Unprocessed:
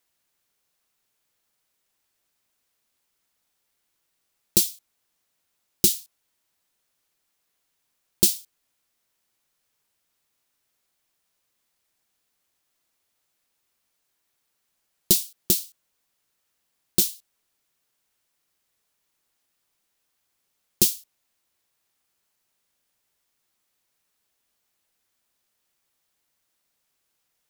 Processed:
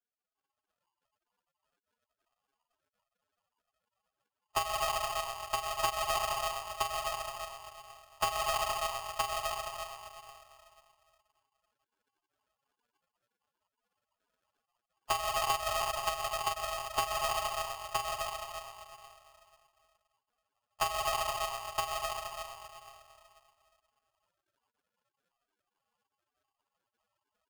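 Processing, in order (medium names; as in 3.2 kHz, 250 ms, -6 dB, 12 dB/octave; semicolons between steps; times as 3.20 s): high-pass 66 Hz 12 dB/octave; delay 969 ms -7.5 dB; plate-style reverb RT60 2.7 s, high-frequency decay 0.55×, DRR -2 dB; compression 2.5:1, threshold -26 dBFS, peak gain reduction 9.5 dB; loudest bins only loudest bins 8; frequency inversion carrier 2.5 kHz; sample-and-hold 36×; saturation -30 dBFS, distortion -15 dB; level rider gain up to 11 dB; polarity switched at an audio rate 960 Hz; trim -3.5 dB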